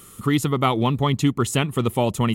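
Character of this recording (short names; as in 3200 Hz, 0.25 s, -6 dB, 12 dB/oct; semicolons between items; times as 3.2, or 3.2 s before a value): noise floor -46 dBFS; spectral tilt -5.5 dB/oct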